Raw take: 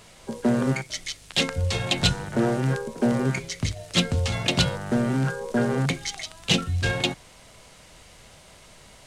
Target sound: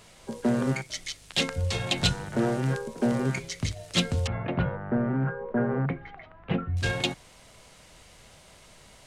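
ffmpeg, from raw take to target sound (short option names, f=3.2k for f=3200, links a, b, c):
-filter_complex "[0:a]asettb=1/sr,asplit=3[a][b][c];[a]atrim=end=4.274[d];[b]atrim=start=4.27:end=6.77,asetpts=PTS-STARTPTS,afade=t=in:d=0.004:c=qsin,afade=t=out:st=2.496:d=0.004:c=qsin,lowpass=f=1.8k:w=0.5412,lowpass=f=1.8k:w=1.3066[e];[c]atrim=start=6.766[f];[d][e]acrossfade=d=0.004:c1=hsin:c2=qsin[g];[g][f]acrossfade=d=0.004:c1=qsin:c2=hsin,volume=-3dB"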